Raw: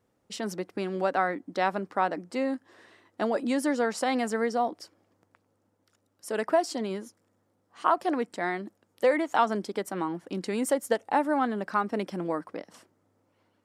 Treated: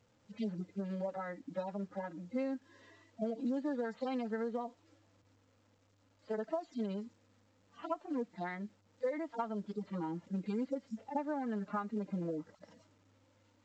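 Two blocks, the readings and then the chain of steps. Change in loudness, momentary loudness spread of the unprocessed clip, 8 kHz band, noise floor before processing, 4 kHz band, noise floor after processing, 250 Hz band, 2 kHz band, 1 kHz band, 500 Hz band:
-10.5 dB, 9 LU, under -25 dB, -73 dBFS, -18.0 dB, -71 dBFS, -7.0 dB, -16.5 dB, -15.0 dB, -11.0 dB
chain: median-filter separation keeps harmonic; compressor 6:1, threshold -34 dBFS, peak gain reduction 14.5 dB; low shelf 130 Hz +7 dB; notch comb 370 Hz; A-law 128 kbps 16000 Hz

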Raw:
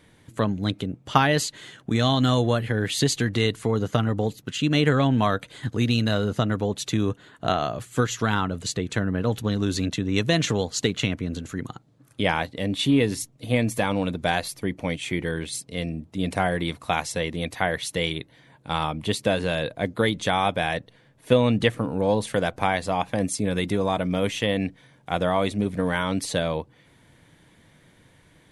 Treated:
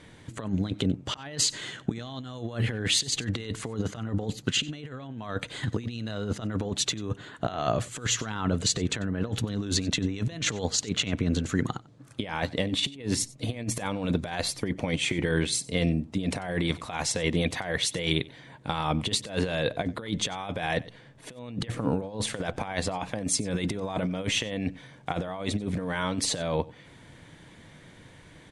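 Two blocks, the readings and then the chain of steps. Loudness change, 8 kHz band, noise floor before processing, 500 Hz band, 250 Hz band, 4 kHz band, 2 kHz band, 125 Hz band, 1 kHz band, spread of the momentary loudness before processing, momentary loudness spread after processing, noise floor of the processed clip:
-4.5 dB, +3.0 dB, -57 dBFS, -7.5 dB, -5.5 dB, -0.5 dB, -5.5 dB, -5.0 dB, -8.5 dB, 10 LU, 9 LU, -52 dBFS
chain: LPF 9200 Hz 24 dB/oct; negative-ratio compressor -28 dBFS, ratio -0.5; echo 93 ms -21.5 dB

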